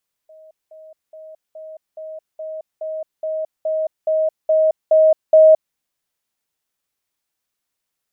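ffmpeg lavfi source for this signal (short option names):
-f lavfi -i "aevalsrc='pow(10,(-41.5+3*floor(t/0.42))/20)*sin(2*PI*630*t)*clip(min(mod(t,0.42),0.22-mod(t,0.42))/0.005,0,1)':d=5.46:s=44100"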